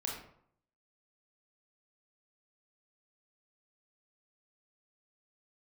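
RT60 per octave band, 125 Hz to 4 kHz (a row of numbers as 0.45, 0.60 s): 0.75, 0.65, 0.65, 0.65, 0.50, 0.40 s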